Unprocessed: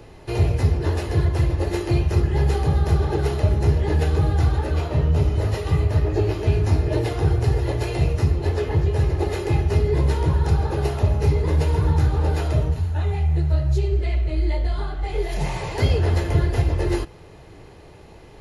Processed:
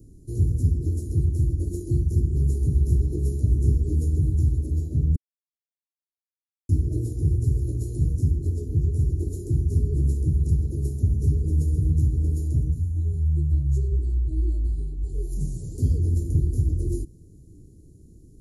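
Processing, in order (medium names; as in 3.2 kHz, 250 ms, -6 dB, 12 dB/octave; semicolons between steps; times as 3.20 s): 2.59–4.08 s: doubling 17 ms -6 dB; 5.16–6.69 s: mute; Chebyshev band-stop 290–7300 Hz, order 3; trim -1.5 dB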